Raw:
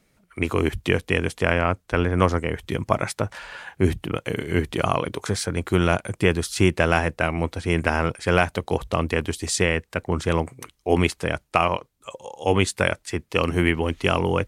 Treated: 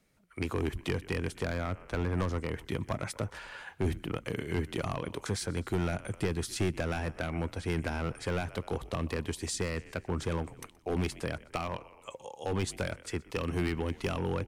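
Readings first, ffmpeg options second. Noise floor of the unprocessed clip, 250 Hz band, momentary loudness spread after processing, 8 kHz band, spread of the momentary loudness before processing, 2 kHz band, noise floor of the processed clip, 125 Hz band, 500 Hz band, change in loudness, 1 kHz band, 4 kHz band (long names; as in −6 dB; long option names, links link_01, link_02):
−66 dBFS, −10.0 dB, 6 LU, −9.5 dB, 8 LU, −14.0 dB, −58 dBFS, −9.0 dB, −12.0 dB, −11.0 dB, −14.0 dB, −11.5 dB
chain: -filter_complex "[0:a]asplit=5[link_01][link_02][link_03][link_04][link_05];[link_02]adelay=124,afreqshift=-48,volume=-23.5dB[link_06];[link_03]adelay=248,afreqshift=-96,volume=-28.7dB[link_07];[link_04]adelay=372,afreqshift=-144,volume=-33.9dB[link_08];[link_05]adelay=496,afreqshift=-192,volume=-39.1dB[link_09];[link_01][link_06][link_07][link_08][link_09]amix=inputs=5:normalize=0,volume=15dB,asoftclip=hard,volume=-15dB,acrossover=split=300[link_10][link_11];[link_11]acompressor=threshold=-26dB:ratio=4[link_12];[link_10][link_12]amix=inputs=2:normalize=0,volume=-7dB"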